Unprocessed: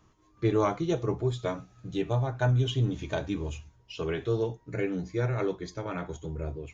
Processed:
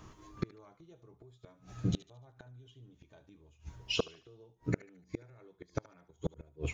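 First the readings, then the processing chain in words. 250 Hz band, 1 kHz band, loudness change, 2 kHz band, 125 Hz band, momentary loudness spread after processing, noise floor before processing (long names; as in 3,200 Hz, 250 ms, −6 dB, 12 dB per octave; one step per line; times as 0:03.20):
−10.0 dB, −16.5 dB, −9.0 dB, −8.5 dB, −12.5 dB, 23 LU, −63 dBFS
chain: brickwall limiter −20.5 dBFS, peak gain reduction 7 dB
gate with flip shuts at −27 dBFS, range −37 dB
on a send: feedback echo with a high-pass in the loop 74 ms, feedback 43%, high-pass 890 Hz, level −16 dB
on the sum: level +9.5 dB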